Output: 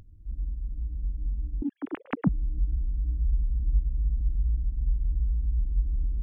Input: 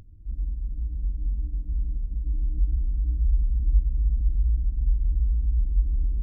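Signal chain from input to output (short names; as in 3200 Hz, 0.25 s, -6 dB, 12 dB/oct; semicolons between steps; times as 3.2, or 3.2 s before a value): 1.62–2.29 sine-wave speech; in parallel at -10 dB: soft clip -21 dBFS, distortion -12 dB; on the sum: gain -5 dB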